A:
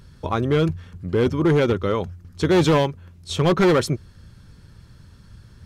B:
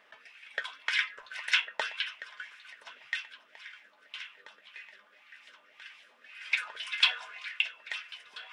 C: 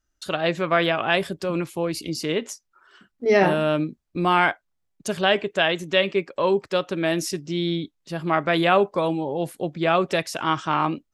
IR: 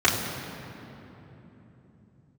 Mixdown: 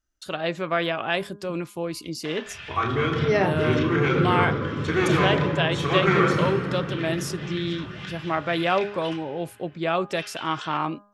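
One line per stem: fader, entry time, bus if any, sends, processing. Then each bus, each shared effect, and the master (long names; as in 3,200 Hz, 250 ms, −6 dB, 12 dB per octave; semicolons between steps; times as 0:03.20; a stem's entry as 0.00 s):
−13.5 dB, 2.45 s, bus A, send −10.5 dB, flat-topped bell 1,700 Hz +9 dB
−1.0 dB, 2.25 s, muted 0:09.16–0:10.17, bus A, send −20 dB, low-pass filter 5,700 Hz 12 dB per octave; notch filter 2,200 Hz, Q 8.2; multiband upward and downward compressor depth 100%
−4.0 dB, 0.00 s, no bus, no send, hum removal 204.2 Hz, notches 8
bus A: 0.0 dB, downward compressor, threshold −36 dBFS, peak gain reduction 12 dB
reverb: on, RT60 3.5 s, pre-delay 3 ms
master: no processing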